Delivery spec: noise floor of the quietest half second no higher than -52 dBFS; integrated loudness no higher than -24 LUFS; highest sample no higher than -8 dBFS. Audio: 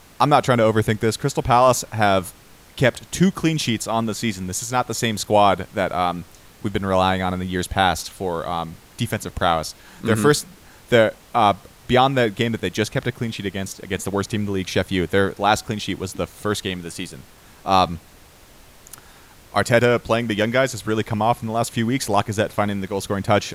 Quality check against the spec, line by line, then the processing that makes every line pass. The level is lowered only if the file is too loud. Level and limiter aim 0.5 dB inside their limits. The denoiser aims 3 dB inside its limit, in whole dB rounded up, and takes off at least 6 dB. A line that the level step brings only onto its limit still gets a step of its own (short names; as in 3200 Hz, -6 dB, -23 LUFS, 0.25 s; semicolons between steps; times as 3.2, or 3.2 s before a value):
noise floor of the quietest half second -48 dBFS: fail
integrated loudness -21.0 LUFS: fail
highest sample -3.0 dBFS: fail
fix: denoiser 6 dB, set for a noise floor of -48 dBFS; gain -3.5 dB; limiter -8.5 dBFS